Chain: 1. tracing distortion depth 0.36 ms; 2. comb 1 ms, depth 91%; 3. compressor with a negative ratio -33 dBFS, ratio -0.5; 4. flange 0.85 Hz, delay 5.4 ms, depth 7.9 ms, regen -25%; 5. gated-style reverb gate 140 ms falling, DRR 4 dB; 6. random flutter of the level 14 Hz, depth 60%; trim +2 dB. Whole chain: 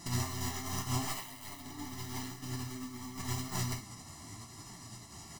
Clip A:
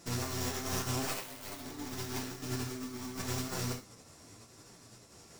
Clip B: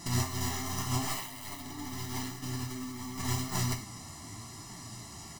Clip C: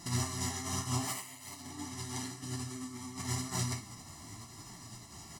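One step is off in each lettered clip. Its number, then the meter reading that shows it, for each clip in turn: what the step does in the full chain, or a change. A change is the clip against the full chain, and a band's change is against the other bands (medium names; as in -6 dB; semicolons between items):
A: 2, 500 Hz band +6.0 dB; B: 6, loudness change +3.5 LU; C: 1, 8 kHz band +2.5 dB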